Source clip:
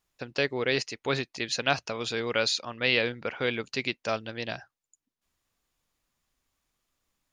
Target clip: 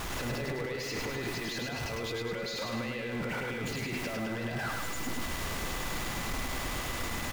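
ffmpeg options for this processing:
-af "aeval=exprs='val(0)+0.5*0.0447*sgn(val(0))':c=same,highshelf=f=3.3k:g=-10.5,alimiter=level_in=8.5dB:limit=-24dB:level=0:latency=1:release=27,volume=-8.5dB,aeval=exprs='val(0)+0.00251*sin(2*PI*2000*n/s)':c=same,aecho=1:1:104|208|312|416|520|624|728:0.708|0.361|0.184|0.0939|0.0479|0.0244|0.0125"

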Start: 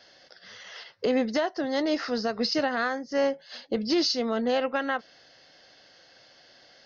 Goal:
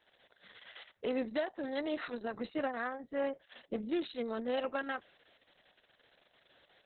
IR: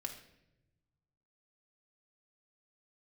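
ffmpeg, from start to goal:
-filter_complex "[0:a]asettb=1/sr,asplit=3[a][b][c];[a]atrim=end=2.394[d];[b]atrim=start=2.39:end=4.06,asetpts=PTS-STARTPTS,afade=t=in:d=0.004:c=qsin,afade=t=out:st=1.666:d=0.004:c=qsin,lowpass=3k[e];[c]atrim=start=4.056[f];[d][e]acrossfade=d=0.004:c1=hsin:c2=qsin[g];[g][f]acrossfade=d=0.004:c1=qsin:c2=hsin,volume=-8.5dB" -ar 48000 -c:a libopus -b:a 6k

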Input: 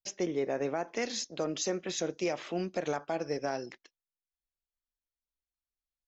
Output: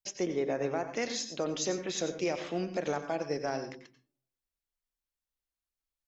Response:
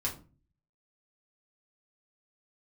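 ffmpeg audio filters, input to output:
-filter_complex "[0:a]asplit=2[a][b];[1:a]atrim=start_sample=2205,adelay=89[c];[b][c]afir=irnorm=-1:irlink=0,volume=-13dB[d];[a][d]amix=inputs=2:normalize=0"

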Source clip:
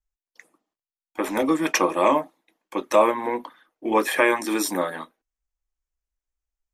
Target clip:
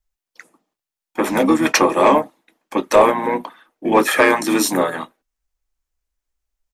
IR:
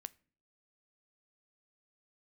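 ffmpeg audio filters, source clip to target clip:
-filter_complex "[0:a]asplit=2[a][b];[b]asetrate=33038,aresample=44100,atempo=1.33484,volume=-8dB[c];[a][c]amix=inputs=2:normalize=0,acontrast=65"

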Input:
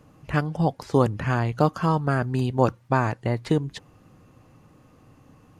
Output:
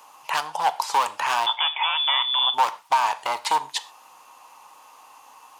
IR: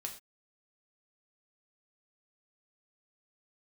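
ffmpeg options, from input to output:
-filter_complex "[0:a]volume=22.5dB,asoftclip=hard,volume=-22.5dB,aexciter=amount=1.7:drive=9.2:freq=2.5k,asettb=1/sr,asplit=3[a][b][c];[a]atrim=end=1.464[d];[b]atrim=start=1.46:end=2.54,asetpts=PTS-STARTPTS,afade=t=in:d=0.004:c=qsin,afade=t=out:st=1.076:d=0.004:c=qsin,lowpass=f=3.1k:t=q:w=0.5098,lowpass=f=3.1k:t=q:w=0.6013,lowpass=f=3.1k:t=q:w=0.9,lowpass=f=3.1k:t=q:w=2.563,afreqshift=-3600[e];[c]atrim=start=2.536[f];[d][e]acrossfade=d=0.004:c1=hsin:c2=qsin[g];[g][f]acrossfade=d=0.004:c1=qsin:c2=hsin,highpass=f=920:t=q:w=8.1,asplit=2[h][i];[1:a]atrim=start_sample=2205,highshelf=f=8.2k:g=-10[j];[i][j]afir=irnorm=-1:irlink=0,volume=-2dB[k];[h][k]amix=inputs=2:normalize=0,alimiter=limit=-10.5dB:level=0:latency=1:release=267"

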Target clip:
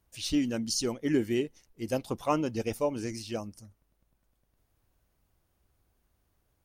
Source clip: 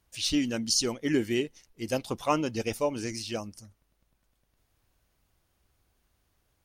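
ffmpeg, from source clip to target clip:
-af "equalizer=f=3.9k:w=0.36:g=-6"

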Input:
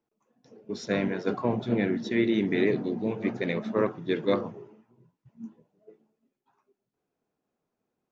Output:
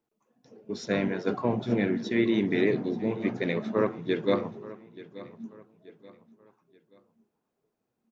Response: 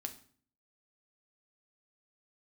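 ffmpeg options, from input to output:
-af "aecho=1:1:880|1760|2640:0.126|0.0478|0.0182"

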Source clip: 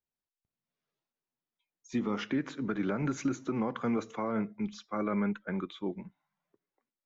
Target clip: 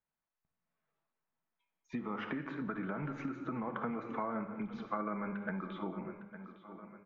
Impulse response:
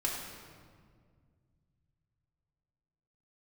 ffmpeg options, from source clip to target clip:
-filter_complex "[0:a]lowpass=1.8k,equalizer=f=390:w=1.6:g=-5.5,aecho=1:1:857|1714|2571:0.126|0.0504|0.0201,asplit=2[a][b];[1:a]atrim=start_sample=2205,afade=t=out:st=0.16:d=0.01,atrim=end_sample=7497,asetrate=22491,aresample=44100[c];[b][c]afir=irnorm=-1:irlink=0,volume=-10.5dB[d];[a][d]amix=inputs=2:normalize=0,acompressor=threshold=-36dB:ratio=6,equalizer=f=1.4k:w=0.32:g=6,volume=-2dB"

